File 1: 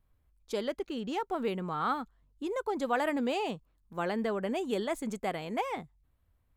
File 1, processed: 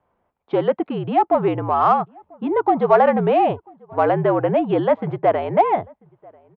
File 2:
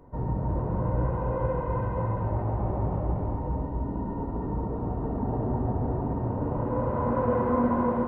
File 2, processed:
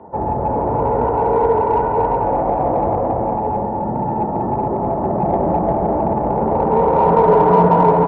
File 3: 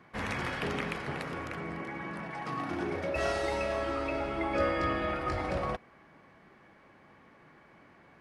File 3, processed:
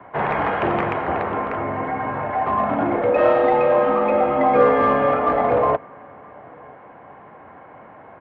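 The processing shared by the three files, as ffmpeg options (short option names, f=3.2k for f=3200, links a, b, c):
-filter_complex "[0:a]highpass=f=150:t=q:w=0.5412,highpass=f=150:t=q:w=1.307,lowpass=f=3.4k:t=q:w=0.5176,lowpass=f=3.4k:t=q:w=0.7071,lowpass=f=3.4k:t=q:w=1.932,afreqshift=-65,equalizer=f=760:w=0.77:g=13,asplit=2[a][b];[b]asoftclip=type=tanh:threshold=-21dB,volume=-6dB[c];[a][c]amix=inputs=2:normalize=0,highshelf=f=2.1k:g=-8.5,asplit=2[d][e];[e]adelay=991.3,volume=-27dB,highshelf=f=4k:g=-22.3[f];[d][f]amix=inputs=2:normalize=0,volume=5dB"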